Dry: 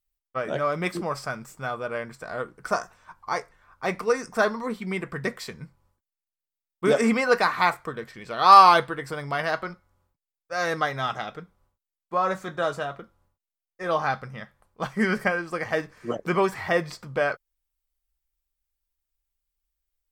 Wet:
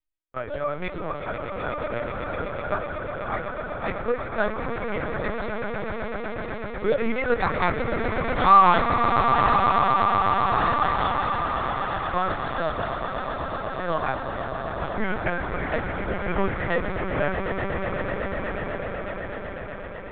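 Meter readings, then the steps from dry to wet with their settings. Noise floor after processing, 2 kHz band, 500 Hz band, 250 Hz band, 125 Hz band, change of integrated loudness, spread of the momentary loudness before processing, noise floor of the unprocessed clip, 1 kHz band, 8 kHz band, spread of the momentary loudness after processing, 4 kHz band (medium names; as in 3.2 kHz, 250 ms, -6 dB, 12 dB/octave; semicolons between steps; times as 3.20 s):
-34 dBFS, +0.5 dB, +0.5 dB, +0.5 dB, +5.0 dB, -0.5 dB, 14 LU, under -85 dBFS, +1.5 dB, under -35 dB, 12 LU, -3.0 dB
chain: echo with a slow build-up 124 ms, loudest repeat 8, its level -9.5 dB; LPC vocoder at 8 kHz pitch kept; trim -2.5 dB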